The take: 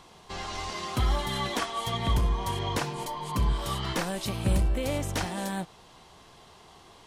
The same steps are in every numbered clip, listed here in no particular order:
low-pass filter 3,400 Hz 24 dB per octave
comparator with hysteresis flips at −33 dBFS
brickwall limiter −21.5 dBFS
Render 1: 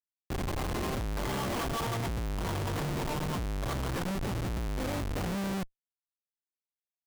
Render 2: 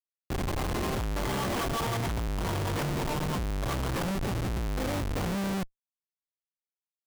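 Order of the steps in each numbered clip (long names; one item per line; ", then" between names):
low-pass filter, then brickwall limiter, then comparator with hysteresis
low-pass filter, then comparator with hysteresis, then brickwall limiter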